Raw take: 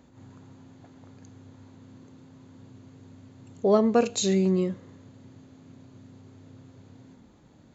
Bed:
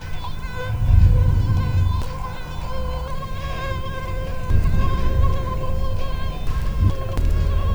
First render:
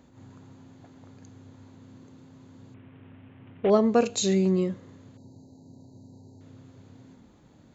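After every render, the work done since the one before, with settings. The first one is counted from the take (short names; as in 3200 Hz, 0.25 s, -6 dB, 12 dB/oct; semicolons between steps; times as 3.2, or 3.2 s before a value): 2.74–3.7 CVSD 16 kbps; 5.17–6.41 brick-wall FIR band-stop 1000–3800 Hz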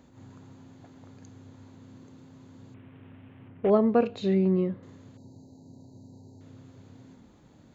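3.47–4.83 air absorption 410 m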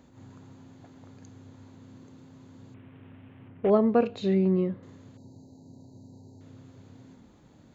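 nothing audible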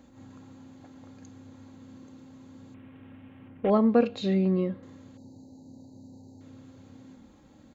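comb 3.7 ms, depth 44%; dynamic EQ 4500 Hz, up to +4 dB, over -58 dBFS, Q 1.1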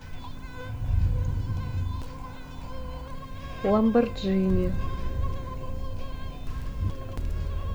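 add bed -11 dB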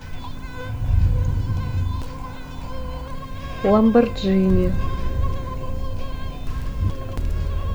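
gain +6.5 dB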